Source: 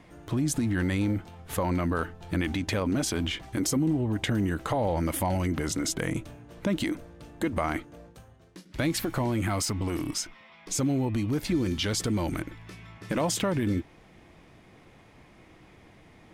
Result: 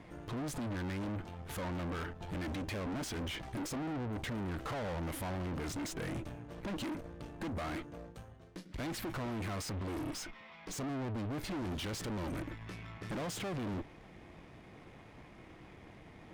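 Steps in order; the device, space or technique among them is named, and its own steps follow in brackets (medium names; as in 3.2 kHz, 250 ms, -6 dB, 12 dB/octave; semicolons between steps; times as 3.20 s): tube preamp driven hard (valve stage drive 40 dB, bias 0.65; treble shelf 4.3 kHz -7 dB); trim +3.5 dB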